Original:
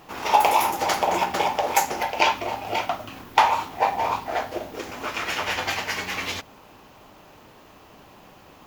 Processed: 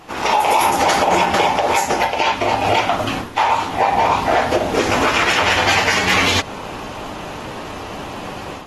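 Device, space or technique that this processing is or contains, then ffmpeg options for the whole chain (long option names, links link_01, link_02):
low-bitrate web radio: -af "dynaudnorm=framelen=150:gausssize=3:maxgain=12dB,alimiter=limit=-13dB:level=0:latency=1:release=125,volume=6.5dB" -ar 48000 -c:a aac -b:a 32k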